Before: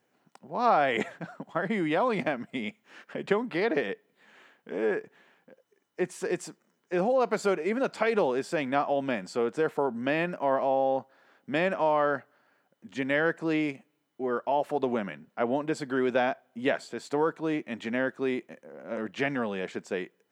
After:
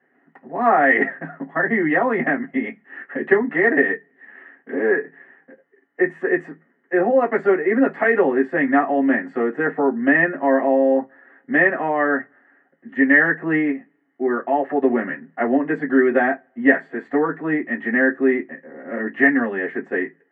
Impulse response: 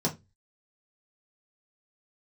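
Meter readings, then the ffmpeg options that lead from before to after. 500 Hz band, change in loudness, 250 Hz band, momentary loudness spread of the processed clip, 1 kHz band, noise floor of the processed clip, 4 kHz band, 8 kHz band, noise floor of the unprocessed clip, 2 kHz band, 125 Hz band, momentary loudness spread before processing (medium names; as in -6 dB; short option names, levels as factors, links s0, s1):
+8.0 dB, +10.0 dB, +11.5 dB, 10 LU, +6.5 dB, -64 dBFS, no reading, under -25 dB, -74 dBFS, +14.5 dB, +3.0 dB, 10 LU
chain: -filter_complex "[0:a]lowpass=f=1900:t=q:w=9.5[s0];[1:a]atrim=start_sample=2205,asetrate=74970,aresample=44100[s1];[s0][s1]afir=irnorm=-1:irlink=0,volume=0.596"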